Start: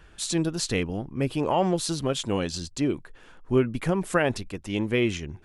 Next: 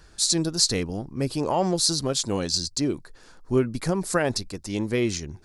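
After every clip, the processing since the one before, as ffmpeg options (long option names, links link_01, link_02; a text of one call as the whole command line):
ffmpeg -i in.wav -af "highshelf=frequency=3700:width_type=q:width=3:gain=6.5" out.wav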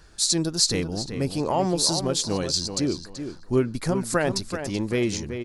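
ffmpeg -i in.wav -filter_complex "[0:a]asplit=2[link_01][link_02];[link_02]adelay=381,lowpass=frequency=3800:poles=1,volume=-8.5dB,asplit=2[link_03][link_04];[link_04]adelay=381,lowpass=frequency=3800:poles=1,volume=0.25,asplit=2[link_05][link_06];[link_06]adelay=381,lowpass=frequency=3800:poles=1,volume=0.25[link_07];[link_01][link_03][link_05][link_07]amix=inputs=4:normalize=0" out.wav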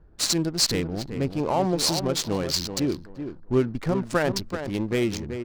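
ffmpeg -i in.wav -af "adynamicsmooth=sensitivity=6.5:basefreq=560" out.wav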